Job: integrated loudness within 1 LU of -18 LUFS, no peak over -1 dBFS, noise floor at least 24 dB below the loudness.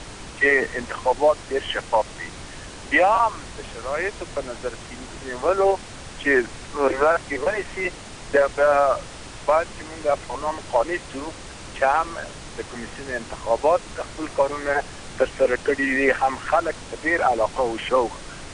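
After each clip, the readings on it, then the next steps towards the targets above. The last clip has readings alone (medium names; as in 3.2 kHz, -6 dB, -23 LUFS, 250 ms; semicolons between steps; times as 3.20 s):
noise floor -39 dBFS; noise floor target -47 dBFS; loudness -22.5 LUFS; peak level -6.0 dBFS; loudness target -18.0 LUFS
-> noise print and reduce 8 dB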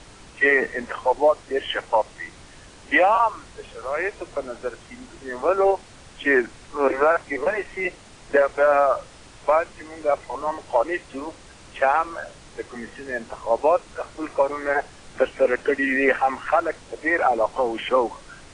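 noise floor -46 dBFS; noise floor target -47 dBFS
-> noise print and reduce 6 dB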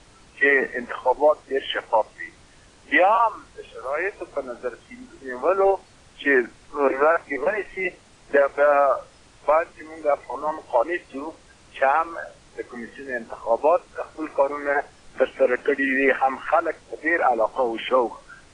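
noise floor -52 dBFS; loudness -22.5 LUFS; peak level -6.5 dBFS; loudness target -18.0 LUFS
-> trim +4.5 dB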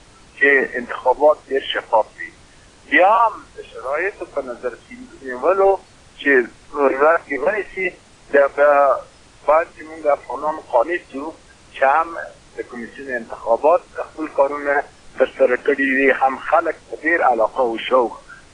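loudness -18.0 LUFS; peak level -2.0 dBFS; noise floor -48 dBFS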